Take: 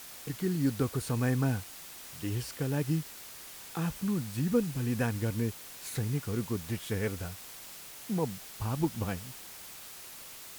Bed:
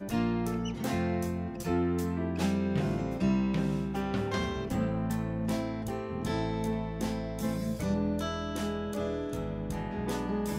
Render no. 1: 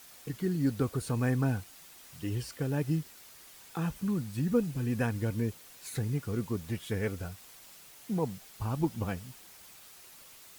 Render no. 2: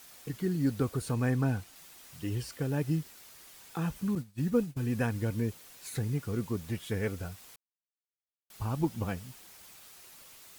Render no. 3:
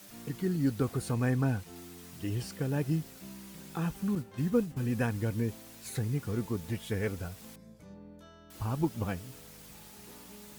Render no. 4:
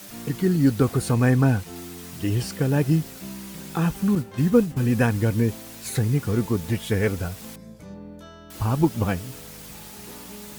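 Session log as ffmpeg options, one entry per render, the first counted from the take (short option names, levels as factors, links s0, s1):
-af "afftdn=nr=7:nf=-47"
-filter_complex "[0:a]asettb=1/sr,asplit=3[s0][s1][s2];[s0]atrim=end=1.144[s3];[s1]atrim=start=1.14:end=1.76,asetpts=PTS-STARTPTS,afade=t=in:d=0.004:c=qsin,afade=t=out:st=0.616:d=0.004:c=qsin,highshelf=f=8500:g=-4[s4];[s2]atrim=start=1.756[s5];[s3][s4]acrossfade=d=0.004:c1=hsin:c2=qsin[s6];[s6][s5]acrossfade=d=0.004:c1=qsin:c2=hsin,asettb=1/sr,asplit=3[s7][s8][s9];[s7]atrim=end=4.154[s10];[s8]atrim=start=4.15:end=4.77,asetpts=PTS-STARTPTS,afade=t=in:d=0.004:c=qsin,afade=t=out:st=0.616:d=0.004:c=qsin,agate=range=0.0224:threshold=0.0316:ratio=3:release=100:detection=peak[s11];[s9]atrim=start=4.766[s12];[s10][s11]acrossfade=d=0.004:c1=hsin:c2=qsin[s13];[s13][s12]acrossfade=d=0.004:c1=qsin:c2=hsin,asplit=3[s14][s15][s16];[s14]atrim=end=7.56,asetpts=PTS-STARTPTS,afade=t=out:st=7.556:d=0.004:c=hsin[s17];[s15]atrim=start=7.56:end=8.5,asetpts=PTS-STARTPTS,volume=0[s18];[s16]atrim=start=8.5,asetpts=PTS-STARTPTS,afade=t=in:d=0.004:c=hsin[s19];[s17][s18][s19]concat=n=3:v=0:a=1"
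-filter_complex "[1:a]volume=0.0944[s0];[0:a][s0]amix=inputs=2:normalize=0"
-af "volume=3.16"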